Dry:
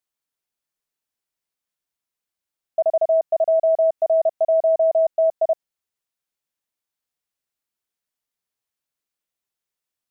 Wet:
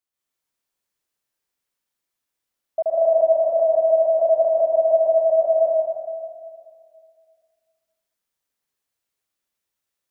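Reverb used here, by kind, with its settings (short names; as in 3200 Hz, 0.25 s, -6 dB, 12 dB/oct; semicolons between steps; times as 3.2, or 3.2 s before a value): plate-style reverb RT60 2.1 s, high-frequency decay 0.85×, pre-delay 0.115 s, DRR -7 dB; gain -3.5 dB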